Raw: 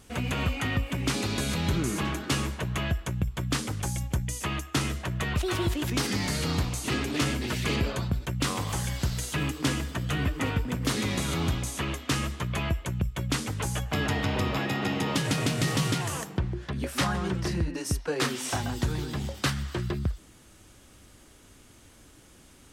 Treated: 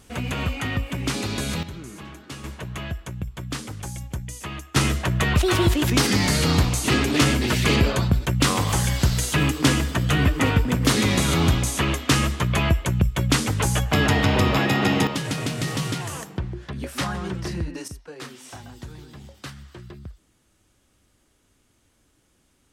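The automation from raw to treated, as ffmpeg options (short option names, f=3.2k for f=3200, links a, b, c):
-af "asetnsamples=n=441:p=0,asendcmd='1.63 volume volume -10dB;2.44 volume volume -2.5dB;4.76 volume volume 8.5dB;15.07 volume volume 0dB;17.88 volume volume -10.5dB',volume=2dB"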